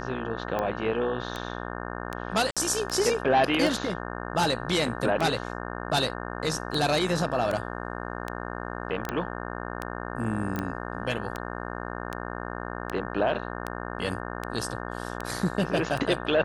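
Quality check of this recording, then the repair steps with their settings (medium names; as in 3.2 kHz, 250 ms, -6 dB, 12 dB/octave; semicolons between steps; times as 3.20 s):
buzz 60 Hz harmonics 30 -35 dBFS
tick 78 rpm -16 dBFS
2.51–2.57 s: dropout 56 ms
9.09 s: pop -15 dBFS
10.56 s: pop -19 dBFS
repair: de-click; de-hum 60 Hz, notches 30; interpolate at 2.51 s, 56 ms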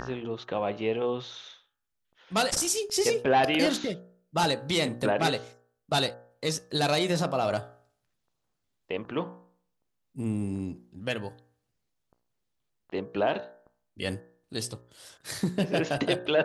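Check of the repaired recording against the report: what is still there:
nothing left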